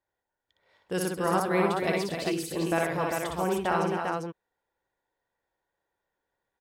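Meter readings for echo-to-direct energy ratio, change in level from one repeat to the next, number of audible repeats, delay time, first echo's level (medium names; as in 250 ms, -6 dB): 1.0 dB, no regular repeats, 5, 60 ms, -3.5 dB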